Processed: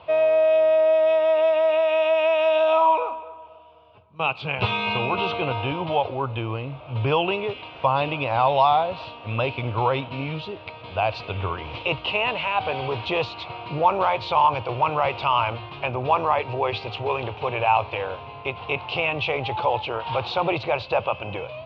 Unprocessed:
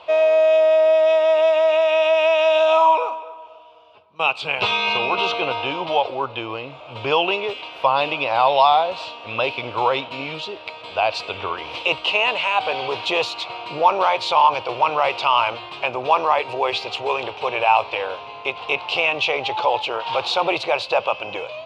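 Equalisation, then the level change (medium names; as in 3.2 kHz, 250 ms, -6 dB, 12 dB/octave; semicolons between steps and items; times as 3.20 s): low-pass 5.7 kHz 24 dB/octave; tone controls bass +12 dB, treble -11 dB; peaking EQ 93 Hz +5.5 dB 1.3 oct; -3.5 dB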